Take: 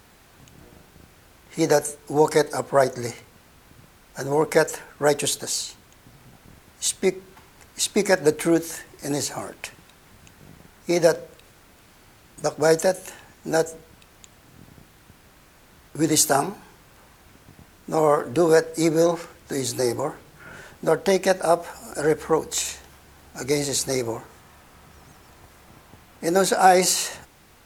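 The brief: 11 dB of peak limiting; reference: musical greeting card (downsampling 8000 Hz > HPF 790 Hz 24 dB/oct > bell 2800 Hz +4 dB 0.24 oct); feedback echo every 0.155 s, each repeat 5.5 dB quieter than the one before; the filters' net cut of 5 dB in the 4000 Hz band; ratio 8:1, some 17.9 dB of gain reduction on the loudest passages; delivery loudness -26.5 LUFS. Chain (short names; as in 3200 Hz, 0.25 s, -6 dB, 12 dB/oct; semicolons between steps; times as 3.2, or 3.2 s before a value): bell 4000 Hz -7 dB; compressor 8:1, threshold -31 dBFS; limiter -29.5 dBFS; feedback echo 0.155 s, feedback 53%, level -5.5 dB; downsampling 8000 Hz; HPF 790 Hz 24 dB/oct; bell 2800 Hz +4 dB 0.24 oct; gain +23 dB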